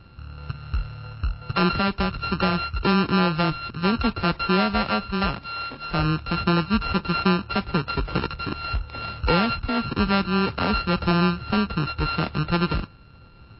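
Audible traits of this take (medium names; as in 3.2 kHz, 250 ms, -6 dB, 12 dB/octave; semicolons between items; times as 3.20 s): a buzz of ramps at a fixed pitch in blocks of 32 samples; MP3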